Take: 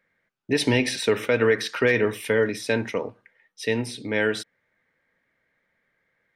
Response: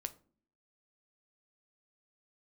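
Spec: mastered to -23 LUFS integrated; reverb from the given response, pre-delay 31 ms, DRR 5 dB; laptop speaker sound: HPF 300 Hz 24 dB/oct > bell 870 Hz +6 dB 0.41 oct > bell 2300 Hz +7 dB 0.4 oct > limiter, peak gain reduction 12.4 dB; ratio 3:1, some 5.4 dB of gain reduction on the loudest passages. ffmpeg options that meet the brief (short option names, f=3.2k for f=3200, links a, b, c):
-filter_complex "[0:a]acompressor=threshold=-23dB:ratio=3,asplit=2[a][b];[1:a]atrim=start_sample=2205,adelay=31[c];[b][c]afir=irnorm=-1:irlink=0,volume=-3dB[d];[a][d]amix=inputs=2:normalize=0,highpass=f=300:w=0.5412,highpass=f=300:w=1.3066,equalizer=f=870:t=o:w=0.41:g=6,equalizer=f=2.3k:t=o:w=0.4:g=7,volume=8.5dB,alimiter=limit=-14dB:level=0:latency=1"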